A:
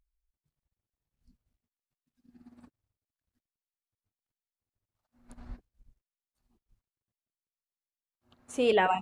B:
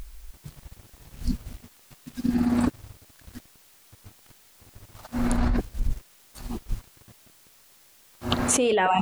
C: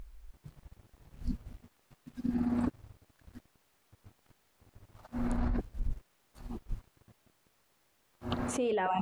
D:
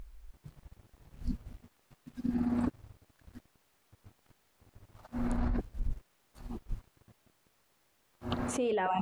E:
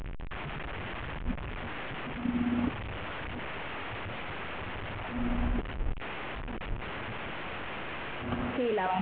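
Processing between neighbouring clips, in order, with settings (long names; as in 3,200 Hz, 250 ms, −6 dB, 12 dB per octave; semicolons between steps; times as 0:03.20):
envelope flattener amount 100%
high-shelf EQ 2,600 Hz −11.5 dB; level −8 dB
no processing that can be heard
linear delta modulator 16 kbit/s, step −32 dBFS; level +1 dB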